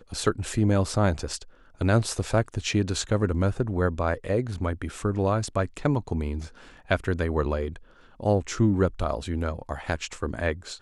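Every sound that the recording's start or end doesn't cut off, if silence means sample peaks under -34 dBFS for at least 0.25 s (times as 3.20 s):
1.81–6.47 s
6.91–7.76 s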